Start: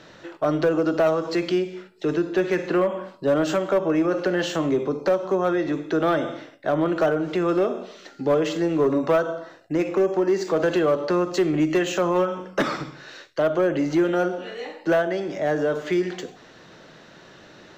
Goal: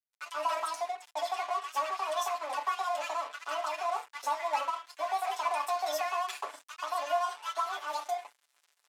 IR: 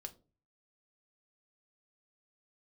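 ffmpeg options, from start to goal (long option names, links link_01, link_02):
-filter_complex "[0:a]atempo=1[link_01];[1:a]atrim=start_sample=2205,afade=type=out:start_time=0.21:duration=0.01,atrim=end_sample=9702,asetrate=61740,aresample=44100[link_02];[link_01][link_02]afir=irnorm=-1:irlink=0,asplit=2[link_03][link_04];[link_04]asoftclip=type=tanh:threshold=-26dB,volume=-12dB[link_05];[link_03][link_05]amix=inputs=2:normalize=0,equalizer=frequency=1500:width_type=o:width=1.4:gain=-7.5,acrossover=split=710[link_06][link_07];[link_06]adelay=270[link_08];[link_08][link_07]amix=inputs=2:normalize=0,areverse,acompressor=mode=upward:threshold=-41dB:ratio=2.5,areverse,aeval=exprs='sgn(val(0))*max(abs(val(0))-0.0075,0)':channel_layout=same,highpass=420,lowpass=5800,asetrate=88200,aresample=44100,aecho=1:1:6.9:0.76"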